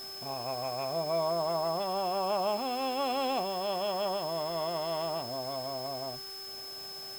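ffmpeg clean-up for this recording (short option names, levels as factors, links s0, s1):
-af "adeclick=t=4,bandreject=f=389.1:t=h:w=4,bandreject=f=778.2:t=h:w=4,bandreject=f=1167.3:t=h:w=4,bandreject=f=1556.4:t=h:w=4,bandreject=f=5200:w=30,afwtdn=0.0028"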